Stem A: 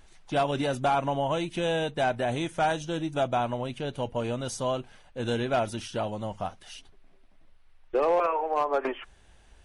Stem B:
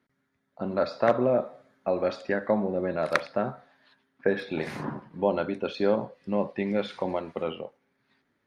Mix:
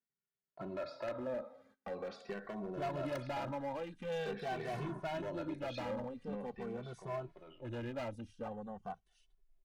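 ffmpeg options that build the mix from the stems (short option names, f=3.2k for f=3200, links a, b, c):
-filter_complex "[0:a]afwtdn=0.0141,adelay=2450,volume=-8.5dB[a];[1:a]agate=range=-21dB:threshold=-59dB:ratio=16:detection=peak,acompressor=threshold=-37dB:ratio=2,asoftclip=type=tanh:threshold=-26dB,volume=-2dB,afade=t=out:st=6.04:d=0.74:silence=0.298538[b];[a][b]amix=inputs=2:normalize=0,volume=33dB,asoftclip=hard,volume=-33dB,asplit=2[c][d];[d]adelay=2.2,afreqshift=-0.45[e];[c][e]amix=inputs=2:normalize=1"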